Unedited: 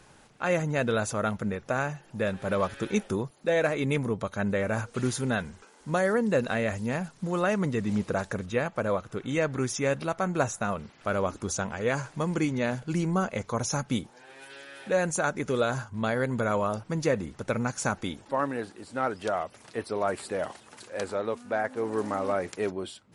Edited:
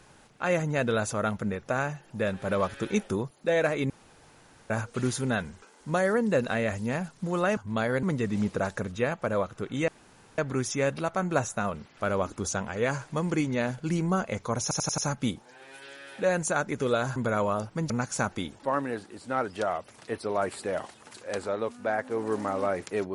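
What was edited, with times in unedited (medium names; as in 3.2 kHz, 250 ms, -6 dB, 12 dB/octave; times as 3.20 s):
3.90–4.70 s: room tone
9.42 s: insert room tone 0.50 s
13.66 s: stutter 0.09 s, 5 plays
15.84–16.30 s: move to 7.57 s
17.04–17.56 s: delete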